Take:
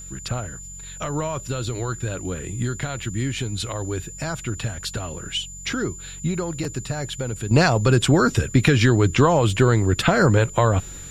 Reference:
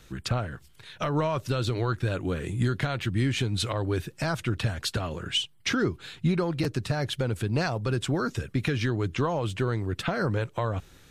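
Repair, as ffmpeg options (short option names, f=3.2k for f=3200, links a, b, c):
-af "bandreject=f=45.8:t=h:w=4,bandreject=f=91.6:t=h:w=4,bandreject=f=137.4:t=h:w=4,bandreject=f=183.2:t=h:w=4,bandreject=f=7.1k:w=30,agate=range=-21dB:threshold=-29dB,asetnsamples=n=441:p=0,asendcmd='7.51 volume volume -10.5dB',volume=0dB"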